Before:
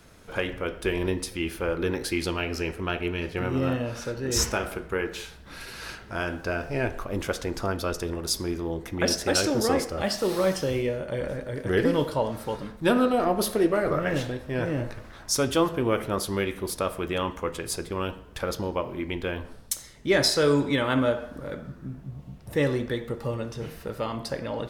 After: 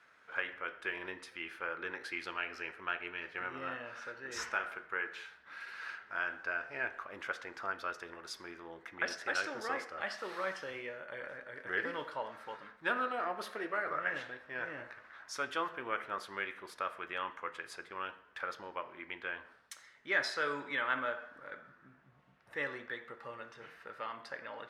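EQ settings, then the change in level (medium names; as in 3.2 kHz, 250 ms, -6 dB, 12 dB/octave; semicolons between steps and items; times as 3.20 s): band-pass filter 1.6 kHz, Q 2; -1.5 dB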